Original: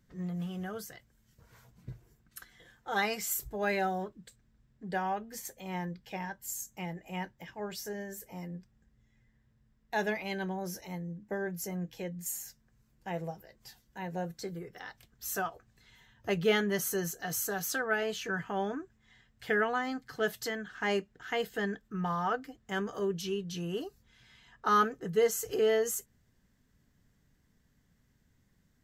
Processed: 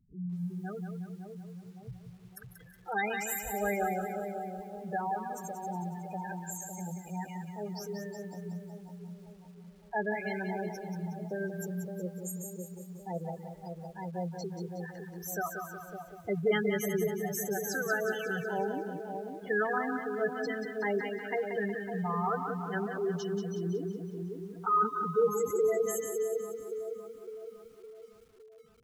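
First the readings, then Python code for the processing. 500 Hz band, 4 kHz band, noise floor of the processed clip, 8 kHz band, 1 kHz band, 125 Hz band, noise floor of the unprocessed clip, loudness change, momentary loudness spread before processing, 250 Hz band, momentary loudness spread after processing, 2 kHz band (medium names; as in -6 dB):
+1.5 dB, -8.0 dB, -55 dBFS, -3.0 dB, +0.5 dB, +2.0 dB, -71 dBFS, -0.5 dB, 17 LU, +1.5 dB, 17 LU, -0.5 dB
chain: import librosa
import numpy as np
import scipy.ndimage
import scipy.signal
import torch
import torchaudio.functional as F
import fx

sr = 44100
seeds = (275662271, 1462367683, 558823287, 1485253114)

y = fx.echo_split(x, sr, split_hz=980.0, low_ms=560, high_ms=146, feedback_pct=52, wet_db=-6.5)
y = fx.spec_gate(y, sr, threshold_db=-10, keep='strong')
y = fx.echo_crushed(y, sr, ms=183, feedback_pct=55, bits=10, wet_db=-7)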